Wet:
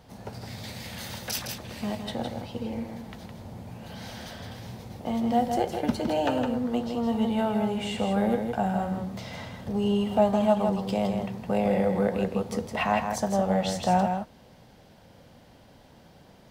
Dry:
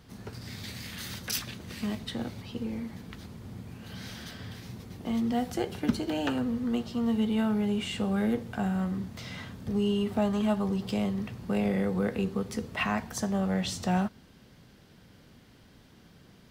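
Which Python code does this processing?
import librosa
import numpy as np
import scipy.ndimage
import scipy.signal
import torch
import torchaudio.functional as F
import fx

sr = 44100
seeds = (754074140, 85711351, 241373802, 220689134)

y = fx.band_shelf(x, sr, hz=690.0, db=9.0, octaves=1.1)
y = y + 10.0 ** (-6.0 / 20.0) * np.pad(y, (int(162 * sr / 1000.0), 0))[:len(y)]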